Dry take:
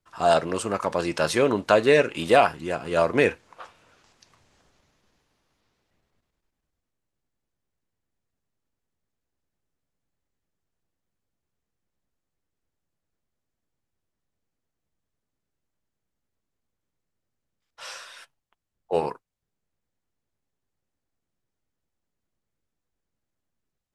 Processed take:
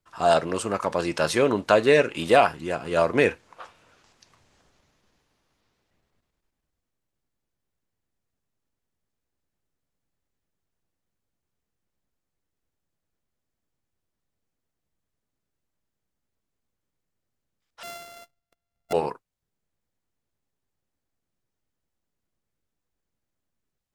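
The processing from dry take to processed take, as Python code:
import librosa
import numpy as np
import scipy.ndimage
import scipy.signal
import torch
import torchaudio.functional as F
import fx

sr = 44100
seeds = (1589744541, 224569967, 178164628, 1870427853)

y = fx.sample_sort(x, sr, block=64, at=(17.83, 18.93))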